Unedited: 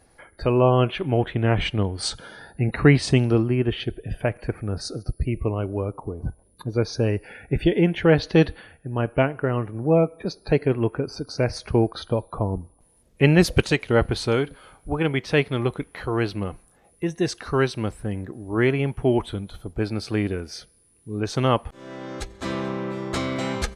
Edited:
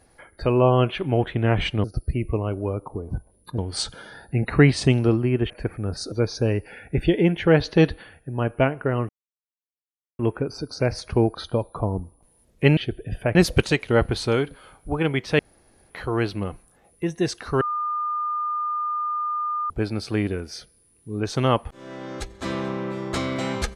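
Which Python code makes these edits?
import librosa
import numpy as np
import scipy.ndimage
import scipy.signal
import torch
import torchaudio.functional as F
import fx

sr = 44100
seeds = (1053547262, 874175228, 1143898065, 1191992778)

y = fx.edit(x, sr, fx.move(start_s=3.76, length_s=0.58, to_s=13.35),
    fx.move(start_s=4.96, length_s=1.74, to_s=1.84),
    fx.silence(start_s=9.67, length_s=1.1),
    fx.room_tone_fill(start_s=15.39, length_s=0.51),
    fx.bleep(start_s=17.61, length_s=2.09, hz=1210.0, db=-23.0), tone=tone)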